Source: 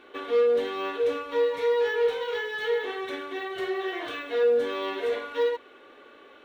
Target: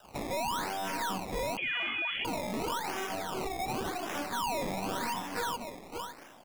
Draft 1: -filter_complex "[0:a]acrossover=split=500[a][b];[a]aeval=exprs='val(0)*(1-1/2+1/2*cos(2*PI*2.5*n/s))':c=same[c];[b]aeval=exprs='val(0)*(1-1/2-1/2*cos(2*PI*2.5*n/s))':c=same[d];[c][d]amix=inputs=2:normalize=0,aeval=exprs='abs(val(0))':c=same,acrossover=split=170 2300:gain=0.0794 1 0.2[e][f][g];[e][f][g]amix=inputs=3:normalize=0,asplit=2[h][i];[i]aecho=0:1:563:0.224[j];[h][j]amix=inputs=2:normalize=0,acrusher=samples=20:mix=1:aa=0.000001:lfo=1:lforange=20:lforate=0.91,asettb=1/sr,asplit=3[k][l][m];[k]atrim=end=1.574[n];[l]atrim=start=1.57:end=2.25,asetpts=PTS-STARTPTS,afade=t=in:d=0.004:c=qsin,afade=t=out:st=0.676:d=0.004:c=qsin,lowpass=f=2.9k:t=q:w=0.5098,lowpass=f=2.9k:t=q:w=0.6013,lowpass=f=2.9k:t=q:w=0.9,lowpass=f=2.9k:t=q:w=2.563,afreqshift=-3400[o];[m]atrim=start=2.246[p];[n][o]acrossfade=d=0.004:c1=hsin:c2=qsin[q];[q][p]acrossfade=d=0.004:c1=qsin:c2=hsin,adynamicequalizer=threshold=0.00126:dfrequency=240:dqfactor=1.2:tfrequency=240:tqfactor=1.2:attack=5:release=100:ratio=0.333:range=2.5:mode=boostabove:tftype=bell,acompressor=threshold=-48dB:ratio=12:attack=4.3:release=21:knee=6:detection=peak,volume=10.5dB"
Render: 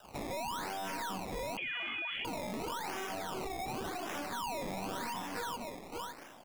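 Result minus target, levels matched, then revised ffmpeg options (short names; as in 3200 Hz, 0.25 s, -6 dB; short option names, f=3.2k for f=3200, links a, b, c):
compressor: peak gain reduction +5.5 dB
-filter_complex "[0:a]acrossover=split=500[a][b];[a]aeval=exprs='val(0)*(1-1/2+1/2*cos(2*PI*2.5*n/s))':c=same[c];[b]aeval=exprs='val(0)*(1-1/2-1/2*cos(2*PI*2.5*n/s))':c=same[d];[c][d]amix=inputs=2:normalize=0,aeval=exprs='abs(val(0))':c=same,acrossover=split=170 2300:gain=0.0794 1 0.2[e][f][g];[e][f][g]amix=inputs=3:normalize=0,asplit=2[h][i];[i]aecho=0:1:563:0.224[j];[h][j]amix=inputs=2:normalize=0,acrusher=samples=20:mix=1:aa=0.000001:lfo=1:lforange=20:lforate=0.91,asettb=1/sr,asplit=3[k][l][m];[k]atrim=end=1.574[n];[l]atrim=start=1.57:end=2.25,asetpts=PTS-STARTPTS,afade=t=in:d=0.004:c=qsin,afade=t=out:st=0.676:d=0.004:c=qsin,lowpass=f=2.9k:t=q:w=0.5098,lowpass=f=2.9k:t=q:w=0.6013,lowpass=f=2.9k:t=q:w=0.9,lowpass=f=2.9k:t=q:w=2.563,afreqshift=-3400[o];[m]atrim=start=2.246[p];[n][o]acrossfade=d=0.004:c1=hsin:c2=qsin[q];[q][p]acrossfade=d=0.004:c1=qsin:c2=hsin,adynamicequalizer=threshold=0.00126:dfrequency=240:dqfactor=1.2:tfrequency=240:tqfactor=1.2:attack=5:release=100:ratio=0.333:range=2.5:mode=boostabove:tftype=bell,acompressor=threshold=-42dB:ratio=12:attack=4.3:release=21:knee=6:detection=peak,volume=10.5dB"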